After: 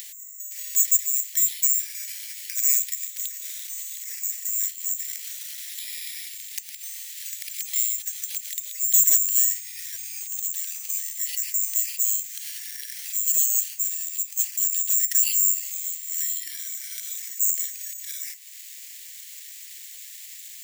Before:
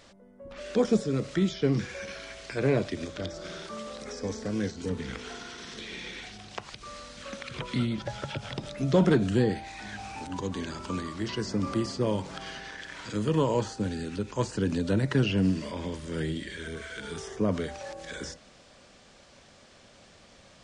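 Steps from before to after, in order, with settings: careless resampling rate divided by 6×, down none, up zero stuff; upward compressor, threshold -23 dBFS; elliptic high-pass 1.9 kHz, stop band 50 dB; trim -2.5 dB

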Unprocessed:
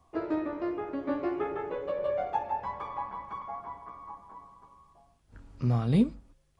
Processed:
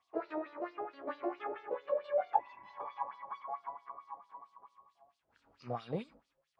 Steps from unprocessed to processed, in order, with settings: LFO band-pass sine 4.5 Hz 550–4600 Hz; spectral replace 2.42–2.68 s, 370–2400 Hz after; trim +2.5 dB

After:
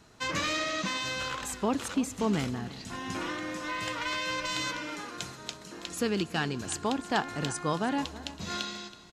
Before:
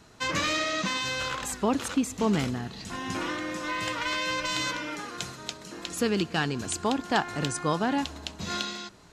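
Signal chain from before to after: delay 325 ms -16.5 dB; trim -3 dB

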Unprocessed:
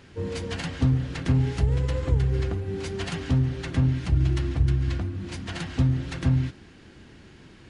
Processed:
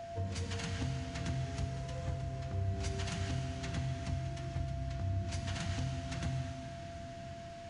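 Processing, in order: fifteen-band graphic EQ 100 Hz +4 dB, 400 Hz -8 dB, 6.3 kHz +6 dB; compression 4:1, threshold -34 dBFS, peak gain reduction 16.5 dB; whistle 680 Hz -37 dBFS; on a send: reverberation RT60 4.2 s, pre-delay 4 ms, DRR 2 dB; on the sum: trim -4 dB

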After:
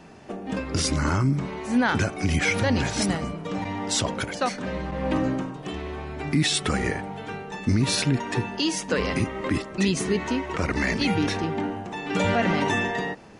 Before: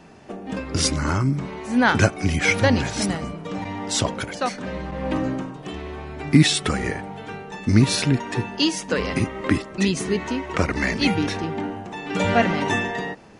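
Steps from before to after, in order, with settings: peak limiter -13.5 dBFS, peak gain reduction 11.5 dB

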